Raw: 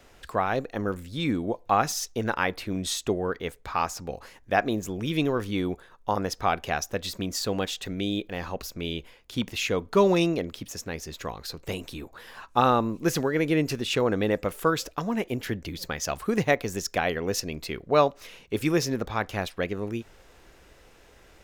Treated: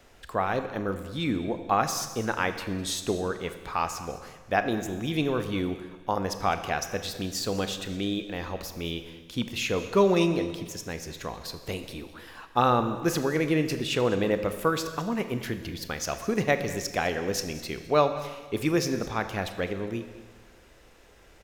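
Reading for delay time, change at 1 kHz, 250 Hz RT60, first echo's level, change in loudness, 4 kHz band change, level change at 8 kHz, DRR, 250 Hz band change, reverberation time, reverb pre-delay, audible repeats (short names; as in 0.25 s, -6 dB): 0.206 s, -1.0 dB, 1.5 s, -17.5 dB, -1.0 dB, -1.0 dB, -1.0 dB, 8.5 dB, -1.0 dB, 1.5 s, 28 ms, 1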